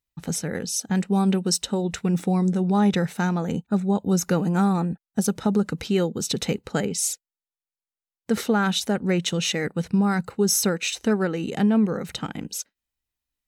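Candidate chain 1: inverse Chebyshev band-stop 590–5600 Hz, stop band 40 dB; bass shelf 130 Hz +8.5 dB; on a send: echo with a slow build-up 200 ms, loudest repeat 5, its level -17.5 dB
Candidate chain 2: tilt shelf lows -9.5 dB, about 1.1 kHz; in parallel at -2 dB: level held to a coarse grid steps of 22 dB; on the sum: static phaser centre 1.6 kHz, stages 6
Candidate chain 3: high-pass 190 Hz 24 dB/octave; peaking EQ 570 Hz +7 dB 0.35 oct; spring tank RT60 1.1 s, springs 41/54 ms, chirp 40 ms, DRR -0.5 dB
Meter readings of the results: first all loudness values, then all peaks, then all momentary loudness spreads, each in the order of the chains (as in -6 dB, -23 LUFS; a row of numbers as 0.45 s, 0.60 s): -23.0 LUFS, -25.0 LUFS, -21.5 LUFS; -9.0 dBFS, -4.0 dBFS, -5.0 dBFS; 12 LU, 13 LU, 7 LU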